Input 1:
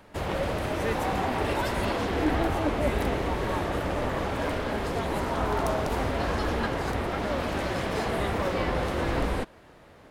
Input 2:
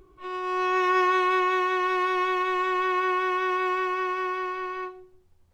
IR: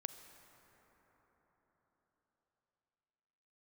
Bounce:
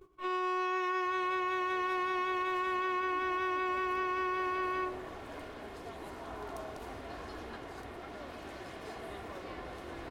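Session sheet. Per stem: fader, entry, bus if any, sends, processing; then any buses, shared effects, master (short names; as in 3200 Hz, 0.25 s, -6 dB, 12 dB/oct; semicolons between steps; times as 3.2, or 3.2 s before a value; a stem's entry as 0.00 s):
-15.5 dB, 0.90 s, no send, comb 2.8 ms, depth 35%
+1.0 dB, 0.00 s, send -20 dB, dry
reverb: on, RT60 4.9 s, pre-delay 33 ms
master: gate -52 dBFS, range -13 dB; low shelf 110 Hz -8 dB; compressor 12:1, threshold -30 dBFS, peak gain reduction 13 dB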